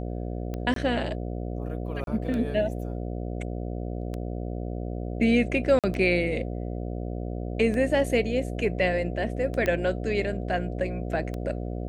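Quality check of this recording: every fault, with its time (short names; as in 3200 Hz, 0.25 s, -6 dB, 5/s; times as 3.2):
buzz 60 Hz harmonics 12 -32 dBFS
tick 33 1/3 rpm -21 dBFS
0.74–0.76 gap 23 ms
2.04–2.07 gap 32 ms
5.79–5.84 gap 47 ms
9.66 pop -14 dBFS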